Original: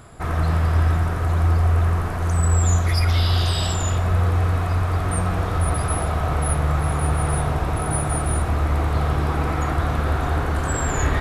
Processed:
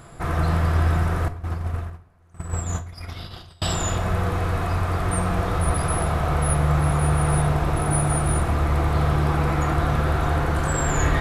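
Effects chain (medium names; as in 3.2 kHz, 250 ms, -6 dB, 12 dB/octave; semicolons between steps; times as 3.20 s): 1.28–3.62 s: gate -15 dBFS, range -35 dB; reverberation RT60 0.55 s, pre-delay 6 ms, DRR 8.5 dB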